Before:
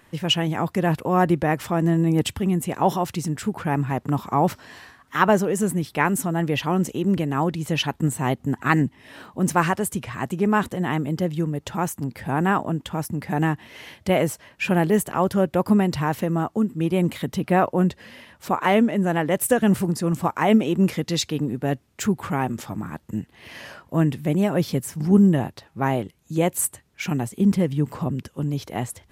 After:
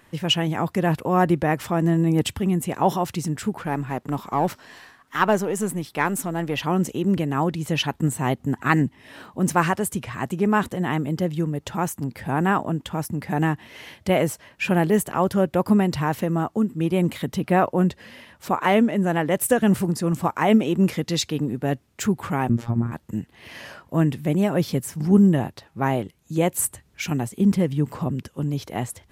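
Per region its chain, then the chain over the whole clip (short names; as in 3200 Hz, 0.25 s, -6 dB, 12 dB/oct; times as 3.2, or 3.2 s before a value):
3.56–6.6 half-wave gain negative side -3 dB + low shelf 110 Hz -10.5 dB
22.49–22.92 tilt -4 dB/oct + robotiser 117 Hz + mismatched tape noise reduction encoder only
26.58–27.1 low shelf 91 Hz +10.5 dB + three-band squash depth 40%
whole clip: dry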